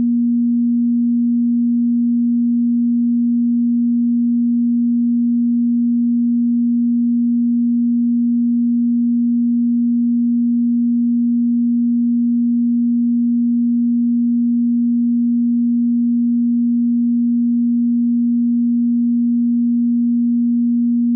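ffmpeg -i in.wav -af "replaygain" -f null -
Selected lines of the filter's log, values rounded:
track_gain = +0.8 dB
track_peak = 0.173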